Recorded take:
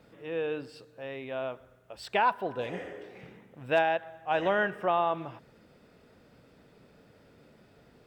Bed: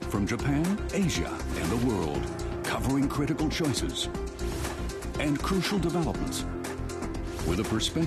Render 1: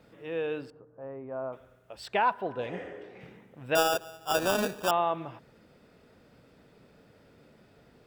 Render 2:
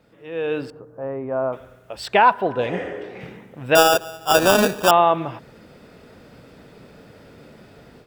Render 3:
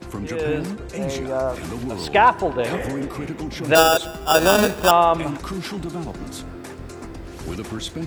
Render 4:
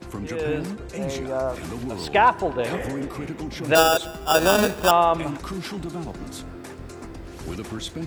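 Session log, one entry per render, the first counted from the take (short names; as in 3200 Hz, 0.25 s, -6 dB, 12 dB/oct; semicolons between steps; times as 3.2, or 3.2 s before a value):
0.7–1.53 Chebyshev low-pass 1200 Hz, order 3; 2.08–3.21 high shelf 5300 Hz -9 dB; 3.75–4.91 sample-rate reducer 2100 Hz
AGC gain up to 12.5 dB
add bed -2 dB
gain -2.5 dB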